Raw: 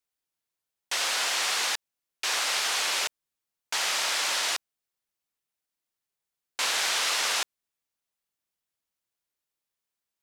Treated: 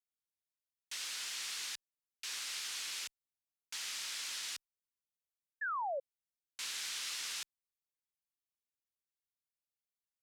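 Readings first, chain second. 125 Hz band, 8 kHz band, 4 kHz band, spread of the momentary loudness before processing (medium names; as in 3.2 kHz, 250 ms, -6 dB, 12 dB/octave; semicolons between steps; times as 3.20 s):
no reading, -12.0 dB, -13.5 dB, 8 LU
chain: amplifier tone stack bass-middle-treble 6-0-2; painted sound fall, 5.61–6.00 s, 520–1800 Hz -39 dBFS; trim +2.5 dB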